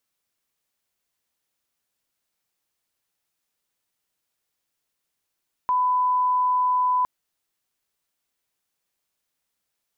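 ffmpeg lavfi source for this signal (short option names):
-f lavfi -i "sine=f=1000:d=1.36:r=44100,volume=0.06dB"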